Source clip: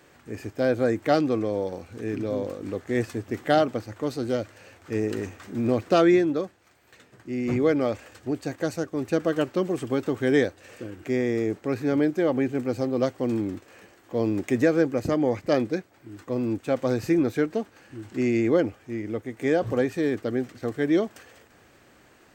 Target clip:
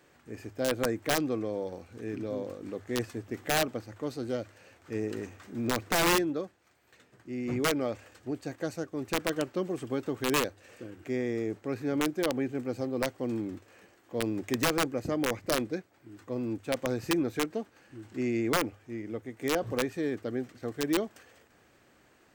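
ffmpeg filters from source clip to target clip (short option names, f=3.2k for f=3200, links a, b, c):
-af "aeval=exprs='(mod(4.47*val(0)+1,2)-1)/4.47':c=same,bandreject=f=50:t=h:w=6,bandreject=f=100:t=h:w=6,volume=-6.5dB"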